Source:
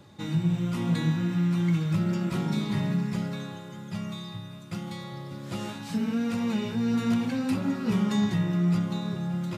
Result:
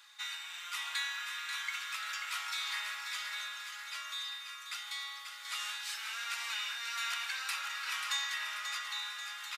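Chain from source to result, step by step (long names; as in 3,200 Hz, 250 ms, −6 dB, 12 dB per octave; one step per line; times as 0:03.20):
inverse Chebyshev high-pass filter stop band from 300 Hz, stop band 70 dB
on a send: repeating echo 537 ms, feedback 52%, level −7 dB
on the sum: level +4.5 dB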